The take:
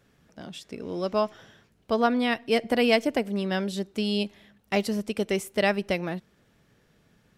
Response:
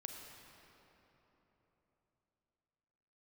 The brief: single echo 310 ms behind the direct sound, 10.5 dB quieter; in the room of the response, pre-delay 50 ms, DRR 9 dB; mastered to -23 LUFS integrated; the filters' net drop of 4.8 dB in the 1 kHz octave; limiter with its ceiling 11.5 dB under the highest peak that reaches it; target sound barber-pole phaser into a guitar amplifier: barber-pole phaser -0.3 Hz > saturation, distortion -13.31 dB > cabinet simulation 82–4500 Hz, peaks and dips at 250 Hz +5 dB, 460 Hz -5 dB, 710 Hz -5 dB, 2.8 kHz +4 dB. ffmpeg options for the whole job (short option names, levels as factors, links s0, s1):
-filter_complex "[0:a]equalizer=f=1000:t=o:g=-3,alimiter=limit=0.1:level=0:latency=1,aecho=1:1:310:0.299,asplit=2[s0][s1];[1:a]atrim=start_sample=2205,adelay=50[s2];[s1][s2]afir=irnorm=-1:irlink=0,volume=0.501[s3];[s0][s3]amix=inputs=2:normalize=0,asplit=2[s4][s5];[s5]afreqshift=-0.3[s6];[s4][s6]amix=inputs=2:normalize=1,asoftclip=threshold=0.0355,highpass=82,equalizer=f=250:t=q:w=4:g=5,equalizer=f=460:t=q:w=4:g=-5,equalizer=f=710:t=q:w=4:g=-5,equalizer=f=2800:t=q:w=4:g=4,lowpass=f=4500:w=0.5412,lowpass=f=4500:w=1.3066,volume=5.01"